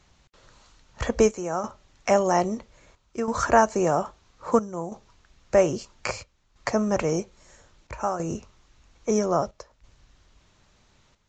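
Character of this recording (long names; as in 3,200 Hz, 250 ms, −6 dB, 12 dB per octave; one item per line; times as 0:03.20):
chopped level 0.61 Hz, depth 65%, duty 80%
Ogg Vorbis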